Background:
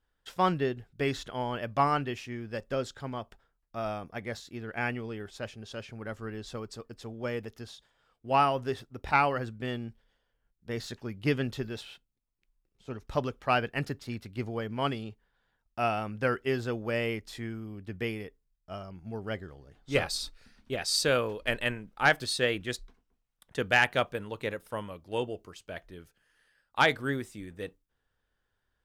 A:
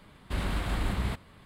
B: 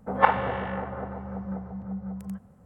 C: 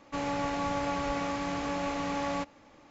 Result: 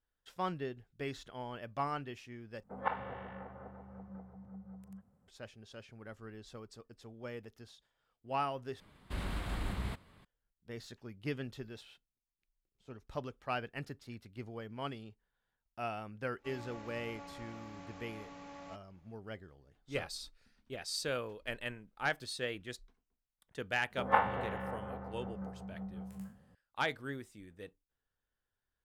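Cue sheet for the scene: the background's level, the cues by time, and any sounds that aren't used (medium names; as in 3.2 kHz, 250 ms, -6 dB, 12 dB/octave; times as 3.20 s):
background -10.5 dB
2.63 s: replace with B -15.5 dB
8.80 s: replace with A -7.5 dB
16.32 s: add C -18 dB, fades 0.10 s
23.90 s: add B -10 dB + spectral sustain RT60 0.38 s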